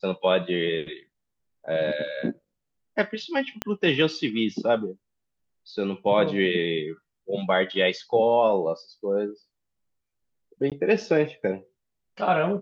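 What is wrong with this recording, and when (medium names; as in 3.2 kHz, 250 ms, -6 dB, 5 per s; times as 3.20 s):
3.62 s: pop -11 dBFS
10.70–10.72 s: dropout 17 ms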